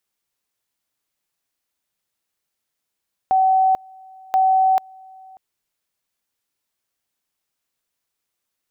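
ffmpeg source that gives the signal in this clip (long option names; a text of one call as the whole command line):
ffmpeg -f lavfi -i "aevalsrc='pow(10,(-12.5-27.5*gte(mod(t,1.03),0.44))/20)*sin(2*PI*759*t)':duration=2.06:sample_rate=44100" out.wav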